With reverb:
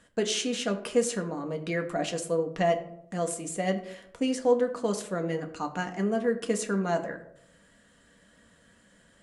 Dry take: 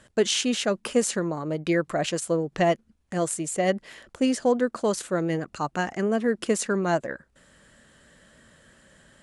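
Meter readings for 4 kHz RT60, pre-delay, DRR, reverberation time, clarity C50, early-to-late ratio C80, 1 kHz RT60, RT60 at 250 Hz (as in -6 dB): 0.40 s, 4 ms, 3.5 dB, 0.75 s, 12.5 dB, 14.5 dB, 0.65 s, 0.80 s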